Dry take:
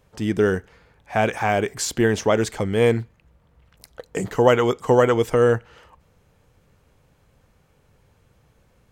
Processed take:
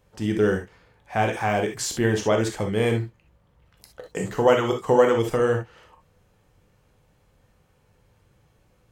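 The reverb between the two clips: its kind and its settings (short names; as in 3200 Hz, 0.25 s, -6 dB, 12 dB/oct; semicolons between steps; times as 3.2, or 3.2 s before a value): non-linear reverb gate 90 ms flat, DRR 3 dB; gain -4 dB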